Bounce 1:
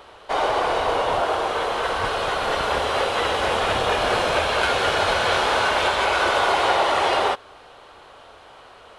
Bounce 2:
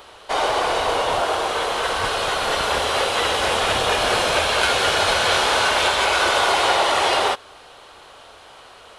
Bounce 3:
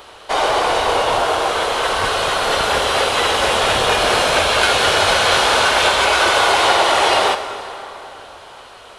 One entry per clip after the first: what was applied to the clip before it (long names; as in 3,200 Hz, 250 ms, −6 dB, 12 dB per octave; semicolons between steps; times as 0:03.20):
high-shelf EQ 3,400 Hz +10 dB
dense smooth reverb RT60 3.6 s, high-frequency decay 0.65×, DRR 8.5 dB; level +3.5 dB